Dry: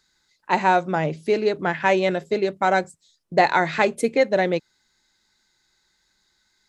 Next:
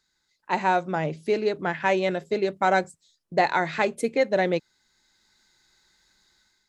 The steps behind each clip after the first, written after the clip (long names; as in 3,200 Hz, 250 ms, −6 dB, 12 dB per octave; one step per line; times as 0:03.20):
automatic gain control gain up to 9.5 dB
level −6.5 dB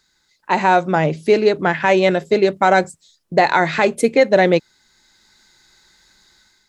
boost into a limiter +11 dB
level −1 dB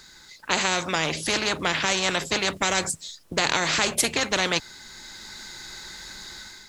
every bin compressed towards the loudest bin 4 to 1
level −3 dB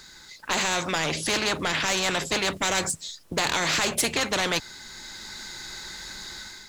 soft clipping −18.5 dBFS, distortion −11 dB
level +1.5 dB